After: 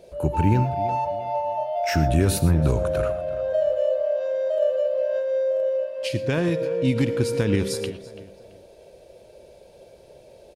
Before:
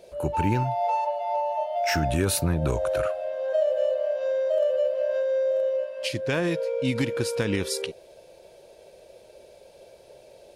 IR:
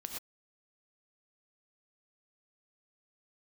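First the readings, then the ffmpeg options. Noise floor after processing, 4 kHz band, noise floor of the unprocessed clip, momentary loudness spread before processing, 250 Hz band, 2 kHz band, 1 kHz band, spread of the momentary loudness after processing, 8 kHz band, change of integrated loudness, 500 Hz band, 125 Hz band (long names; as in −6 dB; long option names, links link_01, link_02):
−50 dBFS, −1.5 dB, −52 dBFS, 5 LU, +4.5 dB, −1.0 dB, +0.5 dB, 7 LU, −1.5 dB, +2.5 dB, +2.0 dB, +6.5 dB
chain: -filter_complex "[0:a]lowshelf=frequency=380:gain=8.5,asplit=2[link_01][link_02];[link_02]adelay=335,lowpass=frequency=3300:poles=1,volume=-15dB,asplit=2[link_03][link_04];[link_04]adelay=335,lowpass=frequency=3300:poles=1,volume=0.34,asplit=2[link_05][link_06];[link_06]adelay=335,lowpass=frequency=3300:poles=1,volume=0.34[link_07];[link_01][link_03][link_05][link_07]amix=inputs=4:normalize=0,asplit=2[link_08][link_09];[1:a]atrim=start_sample=2205[link_10];[link_09][link_10]afir=irnorm=-1:irlink=0,volume=-6.5dB[link_11];[link_08][link_11]amix=inputs=2:normalize=0,volume=-4dB"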